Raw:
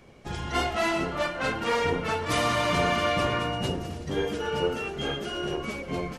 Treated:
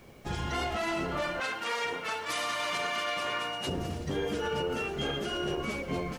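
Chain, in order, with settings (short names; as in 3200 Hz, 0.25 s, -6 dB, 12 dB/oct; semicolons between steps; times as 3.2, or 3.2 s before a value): 1.4–3.67 HPF 1200 Hz 6 dB/oct; limiter -23 dBFS, peak gain reduction 8 dB; added noise white -69 dBFS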